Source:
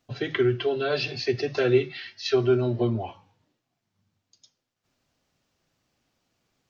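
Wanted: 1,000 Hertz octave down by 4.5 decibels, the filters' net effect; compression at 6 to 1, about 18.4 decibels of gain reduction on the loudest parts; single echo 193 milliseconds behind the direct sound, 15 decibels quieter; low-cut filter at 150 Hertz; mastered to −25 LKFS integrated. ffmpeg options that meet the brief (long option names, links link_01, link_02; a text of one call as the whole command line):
ffmpeg -i in.wav -af "highpass=150,equalizer=frequency=1000:width_type=o:gain=-7.5,acompressor=threshold=-38dB:ratio=6,aecho=1:1:193:0.178,volume=15.5dB" out.wav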